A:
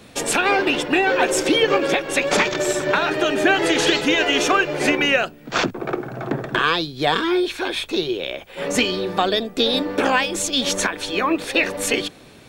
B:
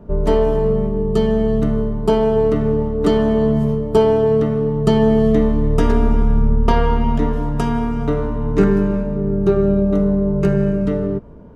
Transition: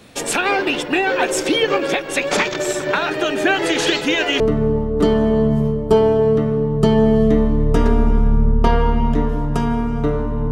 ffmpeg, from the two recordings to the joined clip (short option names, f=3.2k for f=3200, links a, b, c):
-filter_complex "[0:a]apad=whole_dur=10.51,atrim=end=10.51,atrim=end=4.402[a];[1:a]atrim=start=2.438:end=8.55[b];[a][b]acrossfade=d=0.004:c1=hsin:c2=hsin"